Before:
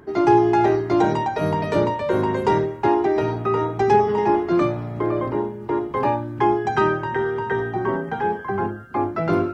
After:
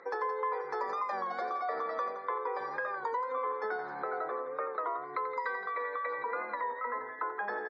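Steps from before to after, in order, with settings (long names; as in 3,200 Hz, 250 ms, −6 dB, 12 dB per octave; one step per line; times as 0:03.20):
high-pass filter 640 Hz 12 dB per octave
gate on every frequency bin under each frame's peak −30 dB strong
downward compressor 6 to 1, threshold −34 dBFS, peak gain reduction 17.5 dB
speed change +24%
Butterworth band-reject 2,800 Hz, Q 1.8
high-frequency loss of the air 160 metres
loudspeakers that aren't time-aligned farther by 30 metres −11 dB, 58 metres −11 dB
wow of a warped record 33 1/3 rpm, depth 100 cents
level +2 dB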